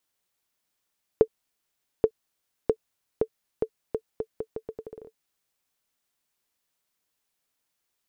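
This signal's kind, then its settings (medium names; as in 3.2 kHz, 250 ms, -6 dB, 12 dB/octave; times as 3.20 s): bouncing ball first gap 0.83 s, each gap 0.79, 442 Hz, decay 68 ms -6 dBFS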